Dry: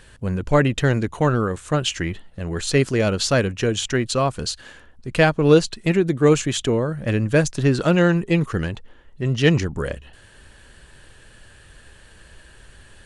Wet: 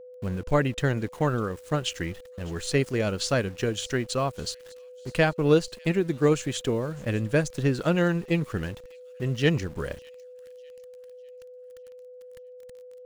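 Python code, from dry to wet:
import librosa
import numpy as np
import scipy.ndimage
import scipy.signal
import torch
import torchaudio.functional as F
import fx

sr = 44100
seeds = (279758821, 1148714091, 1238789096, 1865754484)

y = np.where(np.abs(x) >= 10.0 ** (-36.5 / 20.0), x, 0.0)
y = y + 10.0 ** (-36.0 / 20.0) * np.sin(2.0 * np.pi * 500.0 * np.arange(len(y)) / sr)
y = fx.transient(y, sr, attack_db=2, sustain_db=-2)
y = fx.echo_wet_highpass(y, sr, ms=601, feedback_pct=45, hz=3200.0, wet_db=-20)
y = y * librosa.db_to_amplitude(-7.0)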